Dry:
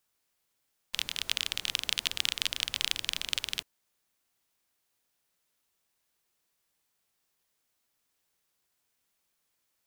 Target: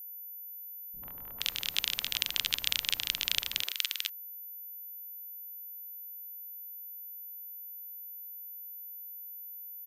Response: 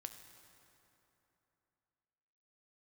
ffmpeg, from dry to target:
-filter_complex "[0:a]acrossover=split=370|1200[link_01][link_02][link_03];[link_02]adelay=90[link_04];[link_03]adelay=470[link_05];[link_01][link_04][link_05]amix=inputs=3:normalize=0,aeval=exprs='val(0)+0.00794*sin(2*PI*14000*n/s)':channel_layout=same"

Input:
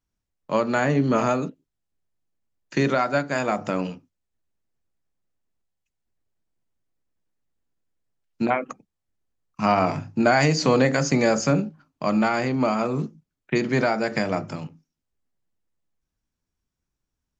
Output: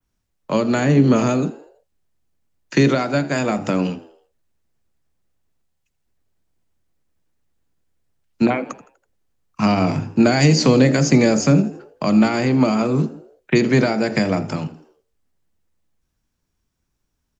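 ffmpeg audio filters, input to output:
ffmpeg -i in.wav -filter_complex "[0:a]adynamicequalizer=threshold=0.01:dfrequency=5600:dqfactor=0.84:tfrequency=5600:tqfactor=0.84:attack=5:release=100:ratio=0.375:range=2:mode=cutabove:tftype=bell,acrossover=split=160|430|2600[link_01][link_02][link_03][link_04];[link_03]acompressor=threshold=-32dB:ratio=6[link_05];[link_01][link_02][link_05][link_04]amix=inputs=4:normalize=0,asplit=5[link_06][link_07][link_08][link_09][link_10];[link_07]adelay=82,afreqshift=73,volume=-19dB[link_11];[link_08]adelay=164,afreqshift=146,volume=-25.4dB[link_12];[link_09]adelay=246,afreqshift=219,volume=-31.8dB[link_13];[link_10]adelay=328,afreqshift=292,volume=-38.1dB[link_14];[link_06][link_11][link_12][link_13][link_14]amix=inputs=5:normalize=0,volume=8dB" out.wav

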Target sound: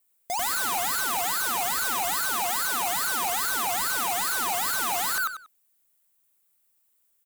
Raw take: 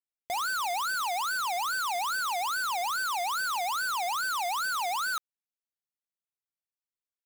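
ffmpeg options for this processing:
ffmpeg -i in.wav -filter_complex "[0:a]aexciter=amount=2.7:drive=8:freq=7500,asplit=2[link_01][link_02];[link_02]adelay=94,lowpass=frequency=4700:poles=1,volume=-5.5dB,asplit=2[link_03][link_04];[link_04]adelay=94,lowpass=frequency=4700:poles=1,volume=0.23,asplit=2[link_05][link_06];[link_06]adelay=94,lowpass=frequency=4700:poles=1,volume=0.23[link_07];[link_01][link_03][link_05][link_07]amix=inputs=4:normalize=0,aeval=exprs='0.178*sin(PI/2*8.91*val(0)/0.178)':channel_layout=same,volume=-9dB" out.wav

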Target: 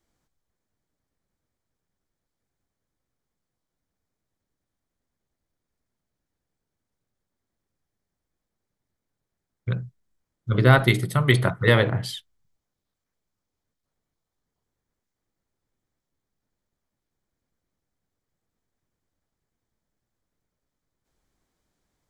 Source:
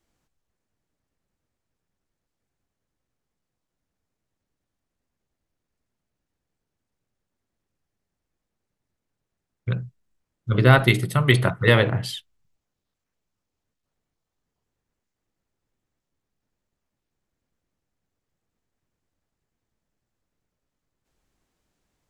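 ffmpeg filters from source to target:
ffmpeg -i in.wav -af "equalizer=frequency=2700:width=7.3:gain=-7,volume=-1dB" out.wav

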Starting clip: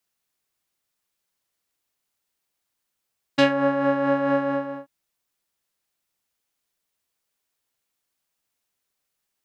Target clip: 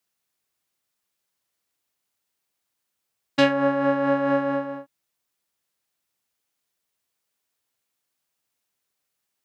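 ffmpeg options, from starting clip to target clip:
ffmpeg -i in.wav -af "highpass=59" out.wav

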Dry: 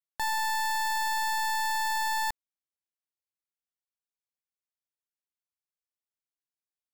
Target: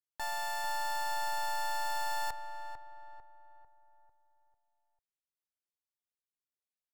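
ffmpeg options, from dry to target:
ffmpeg -i in.wav -filter_complex "[0:a]asplit=3[link_01][link_02][link_03];[link_02]asetrate=29433,aresample=44100,atempo=1.49831,volume=-15dB[link_04];[link_03]asetrate=35002,aresample=44100,atempo=1.25992,volume=-9dB[link_05];[link_01][link_04][link_05]amix=inputs=3:normalize=0,asplit=2[link_06][link_07];[link_07]adelay=447,lowpass=frequency=1500:poles=1,volume=-7dB,asplit=2[link_08][link_09];[link_09]adelay=447,lowpass=frequency=1500:poles=1,volume=0.48,asplit=2[link_10][link_11];[link_11]adelay=447,lowpass=frequency=1500:poles=1,volume=0.48,asplit=2[link_12][link_13];[link_13]adelay=447,lowpass=frequency=1500:poles=1,volume=0.48,asplit=2[link_14][link_15];[link_15]adelay=447,lowpass=frequency=1500:poles=1,volume=0.48,asplit=2[link_16][link_17];[link_17]adelay=447,lowpass=frequency=1500:poles=1,volume=0.48[link_18];[link_06][link_08][link_10][link_12][link_14][link_16][link_18]amix=inputs=7:normalize=0,volume=-8dB" out.wav

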